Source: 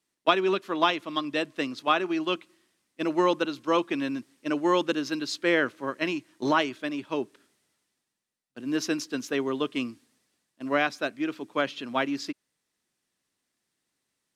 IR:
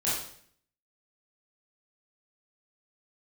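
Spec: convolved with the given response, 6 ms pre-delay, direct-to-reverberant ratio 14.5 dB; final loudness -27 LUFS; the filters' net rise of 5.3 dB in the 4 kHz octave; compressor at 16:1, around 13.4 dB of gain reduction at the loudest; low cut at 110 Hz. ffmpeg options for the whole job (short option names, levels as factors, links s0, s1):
-filter_complex "[0:a]highpass=110,equalizer=f=4000:t=o:g=7,acompressor=threshold=0.0355:ratio=16,asplit=2[s0][s1];[1:a]atrim=start_sample=2205,adelay=6[s2];[s1][s2]afir=irnorm=-1:irlink=0,volume=0.0708[s3];[s0][s3]amix=inputs=2:normalize=0,volume=2.37"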